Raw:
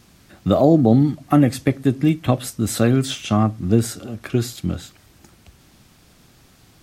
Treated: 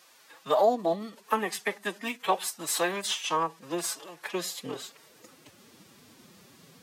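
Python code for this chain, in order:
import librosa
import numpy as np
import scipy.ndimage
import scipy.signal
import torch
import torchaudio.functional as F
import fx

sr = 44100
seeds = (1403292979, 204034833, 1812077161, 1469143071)

y = fx.pitch_keep_formants(x, sr, semitones=7.0)
y = fx.filter_sweep_highpass(y, sr, from_hz=780.0, to_hz=180.0, start_s=4.15, end_s=5.96, q=1.0)
y = y * librosa.db_to_amplitude(-1.5)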